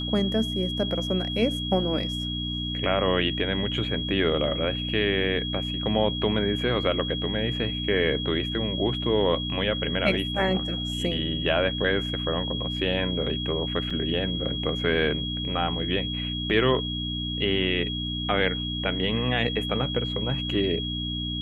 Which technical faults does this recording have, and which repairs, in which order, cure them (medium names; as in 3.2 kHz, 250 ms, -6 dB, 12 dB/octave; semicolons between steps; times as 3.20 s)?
hum 60 Hz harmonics 5 -32 dBFS
whine 3.3 kHz -31 dBFS
13.90 s: dropout 4.4 ms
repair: de-hum 60 Hz, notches 5; band-stop 3.3 kHz, Q 30; interpolate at 13.90 s, 4.4 ms